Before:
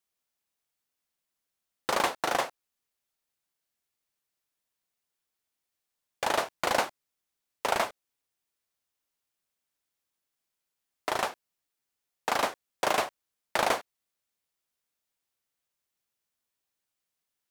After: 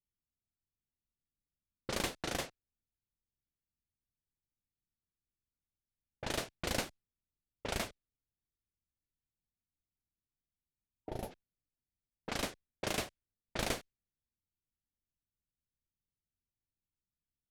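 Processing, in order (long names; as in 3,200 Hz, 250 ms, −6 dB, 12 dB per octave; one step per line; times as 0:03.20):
guitar amp tone stack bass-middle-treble 10-0-1
low-pass that shuts in the quiet parts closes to 390 Hz, open at −50 dBFS
gain on a spectral selection 0:08.96–0:11.31, 930–10,000 Hz −14 dB
level +17 dB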